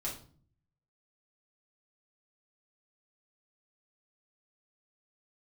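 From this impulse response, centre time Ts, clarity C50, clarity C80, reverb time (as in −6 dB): 25 ms, 7.5 dB, 13.0 dB, 0.45 s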